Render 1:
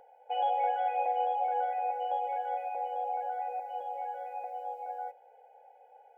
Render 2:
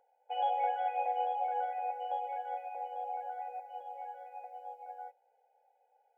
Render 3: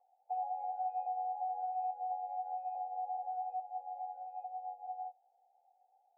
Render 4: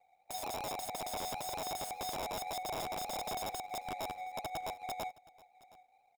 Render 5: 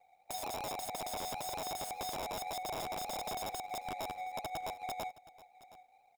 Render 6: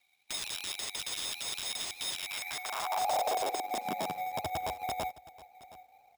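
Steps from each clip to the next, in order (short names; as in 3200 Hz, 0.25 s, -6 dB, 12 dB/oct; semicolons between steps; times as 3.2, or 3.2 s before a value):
low shelf 390 Hz -7 dB; upward expander 1.5:1, over -53 dBFS
bell 1000 Hz -12 dB 0.22 oct; compressor 4:1, threshold -40 dBFS, peak gain reduction 10 dB; vocal tract filter a; gain +7 dB
median filter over 41 samples; wrapped overs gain 43 dB; echo 0.719 s -22 dB; gain +7.5 dB
compressor, threshold -41 dBFS, peak gain reduction 4 dB; gain +3 dB
high-pass sweep 3100 Hz -> 61 Hz, 2.16–4.67; careless resampling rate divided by 3×, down none, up hold; gain +5 dB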